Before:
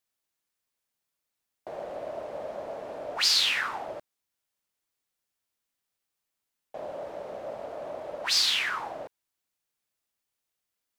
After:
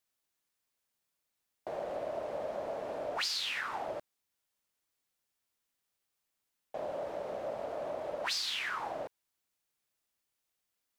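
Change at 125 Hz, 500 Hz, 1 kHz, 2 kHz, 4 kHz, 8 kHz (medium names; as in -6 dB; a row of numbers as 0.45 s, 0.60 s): -1.0 dB, -0.5 dB, -2.5 dB, -7.0 dB, -11.0 dB, -11.0 dB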